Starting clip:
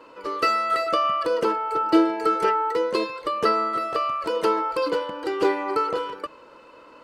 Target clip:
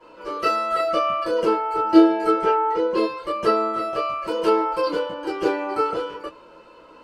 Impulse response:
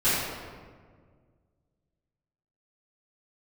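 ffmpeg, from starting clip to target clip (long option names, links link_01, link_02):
-filter_complex "[0:a]asettb=1/sr,asplit=3[link_01][link_02][link_03];[link_01]atrim=end=2.294[link_04];[link_02]atrim=start=2.29:end=2.97,asetpts=PTS-STARTPTS,afade=type=in:duration=0.004:curve=qsin,afade=type=out:start_time=0.676:duration=0.004:curve=qsin,aemphasis=mode=reproduction:type=50fm[link_05];[link_03]atrim=start=2.966[link_06];[link_04][link_05]acrossfade=duration=0.004:curve1=hsin:curve2=qsin[link_07];[link_07][link_06]acrossfade=duration=0.004:curve1=qsin:curve2=hsin[link_08];[1:a]atrim=start_sample=2205,atrim=end_sample=3969,asetrate=83790,aresample=44100[link_09];[link_08][link_09]afir=irnorm=-1:irlink=0,volume=-7dB"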